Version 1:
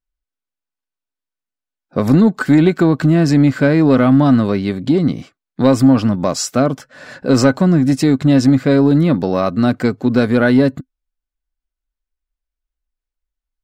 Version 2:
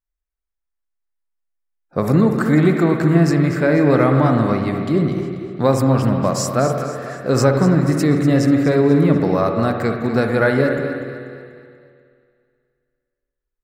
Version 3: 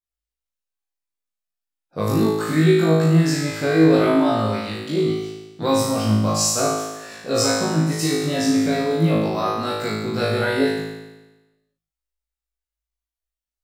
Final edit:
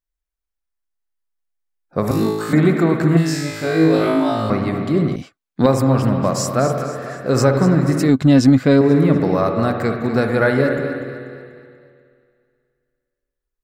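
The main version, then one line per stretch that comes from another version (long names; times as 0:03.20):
2
0:02.11–0:02.53: punch in from 3
0:03.17–0:04.50: punch in from 3
0:05.16–0:05.66: punch in from 1
0:08.09–0:08.81: punch in from 1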